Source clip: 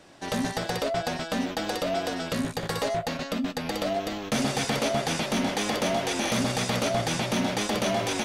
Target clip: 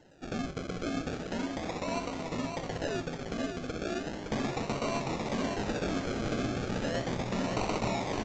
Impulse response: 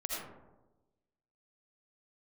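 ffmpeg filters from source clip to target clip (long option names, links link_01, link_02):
-filter_complex "[0:a]asettb=1/sr,asplit=3[link_01][link_02][link_03];[link_01]atrim=end=7.514[link_04];[link_02]atrim=start=7.51:end=7.94,asetpts=PTS-STARTPTS,afade=type=in:duration=0.004:curve=qsin,afade=type=out:start_time=0.426:duration=0.004:curve=qsin,highshelf=frequency=4300:gain=11.5[link_05];[link_03]atrim=start=7.936[link_06];[link_04][link_05]acrossfade=duration=0.004:curve1=hsin:curve2=qsin[link_07];[link_07][link_06]acrossfade=duration=0.004:curve1=qsin:curve2=hsin,acrusher=samples=37:mix=1:aa=0.000001:lfo=1:lforange=22.2:lforate=0.36,aecho=1:1:564:0.531,volume=-7dB" -ar 16000 -c:a pcm_alaw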